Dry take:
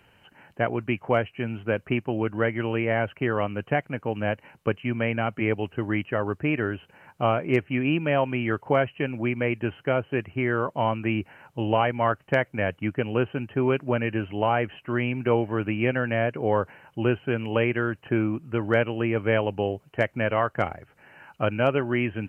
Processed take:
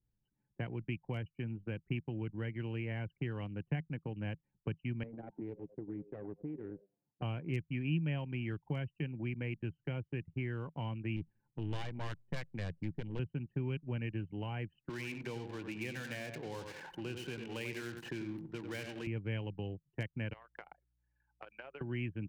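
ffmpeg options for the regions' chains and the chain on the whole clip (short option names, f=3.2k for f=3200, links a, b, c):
-filter_complex "[0:a]asettb=1/sr,asplit=3[a][b][c];[a]atrim=end=5.034[d];[b]atrim=start=5.03:end=7.22,asetpts=PTS-STARTPTS,afade=t=in:d=0.004:c=qsin,afade=t=out:st=2.186:d=0.004:c=qsin,aeval=exprs='clip(val(0),-1,0.0299)':c=same,bandpass=f=370:t=q:w=0.94,asplit=5[e][f][g][h][i];[f]adelay=96,afreqshift=97,volume=-10.5dB[j];[g]adelay=192,afreqshift=194,volume=-19.6dB[k];[h]adelay=288,afreqshift=291,volume=-28.7dB[l];[i]adelay=384,afreqshift=388,volume=-37.9dB[m];[e][j][k][l][m]amix=inputs=5:normalize=0,atrim=end_sample=96579[n];[c]atrim=start=7.216[o];[d][n]acrossfade=d=0.004:c1=hsin:c2=qsin[p];[p][o]acrossfade=d=0.004:c1=qsin:c2=hsin,asettb=1/sr,asplit=3[q][r][s];[q]atrim=end=11.164[t];[r]atrim=start=11.16:end=13.19,asetpts=PTS-STARTPTS,afade=t=in:d=0.004:c=qsin,afade=t=out:st=2.026:d=0.004:c=qsin,aeval=exprs='clip(val(0),-1,0.0251)':c=same,asplit=2[u][v];[v]adelay=94,lowpass=f=900:p=1,volume=-22.5dB,asplit=2[w][x];[x]adelay=94,lowpass=f=900:p=1,volume=0.51,asplit=2[y][z];[z]adelay=94,lowpass=f=900:p=1,volume=0.51[aa];[u][w][y][aa]amix=inputs=4:normalize=0,atrim=end_sample=89523[ab];[s]atrim=start=13.186[ac];[t][ab]acrossfade=d=0.004:c1=hsin:c2=qsin[ad];[ad][ac]acrossfade=d=0.004:c1=qsin:c2=hsin,asettb=1/sr,asplit=3[ae][af][ag];[ae]atrim=end=14.894[ah];[af]atrim=start=14.89:end=19.07,asetpts=PTS-STARTPTS,afade=t=in:d=0.004:c=qsin,afade=t=out:st=4.176:d=0.004:c=qsin,aeval=exprs='val(0)+0.5*0.0316*sgn(val(0))':c=same,highpass=f=510:p=1,asplit=2[ai][aj];[aj]adelay=93,lowpass=f=2.8k:p=1,volume=-6.5dB,asplit=2[ak][al];[al]adelay=93,lowpass=f=2.8k:p=1,volume=0.36,asplit=2[am][an];[an]adelay=93,lowpass=f=2.8k:p=1,volume=0.36,asplit=2[ao][ap];[ap]adelay=93,lowpass=f=2.8k:p=1,volume=0.36[aq];[ai][ak][am][ao][aq]amix=inputs=5:normalize=0,atrim=end_sample=184338[ar];[ag]atrim=start=19.066[as];[ah][ar]acrossfade=d=0.004:c1=hsin:c2=qsin[at];[at][as]acrossfade=d=0.004:c1=qsin:c2=hsin,asettb=1/sr,asplit=3[au][av][aw];[au]atrim=end=20.334[ax];[av]atrim=start=20.33:end=21.81,asetpts=PTS-STARTPTS,afade=t=in:d=0.004:c=qsin,afade=t=out:st=1.476:d=0.004:c=qsin,highpass=730,acompressor=threshold=-30dB:ratio=12:attack=3.2:release=140:knee=1:detection=peak,aeval=exprs='val(0)+0.000794*(sin(2*PI*60*n/s)+sin(2*PI*2*60*n/s)/2+sin(2*PI*3*60*n/s)/3+sin(2*PI*4*60*n/s)/4+sin(2*PI*5*60*n/s)/5)':c=same[ay];[aw]atrim=start=21.806[az];[ax][ay]acrossfade=d=0.004:c1=hsin:c2=qsin[ba];[ba][az]acrossfade=d=0.004:c1=qsin:c2=hsin,anlmdn=15.8,equalizer=f=160:t=o:w=0.33:g=9,equalizer=f=315:t=o:w=0.33:g=4,equalizer=f=630:t=o:w=0.33:g=-8,equalizer=f=1.25k:t=o:w=0.33:g=-8,acrossover=split=170|3000[bb][bc][bd];[bc]acompressor=threshold=-36dB:ratio=6[be];[bb][be][bd]amix=inputs=3:normalize=0,volume=-7dB"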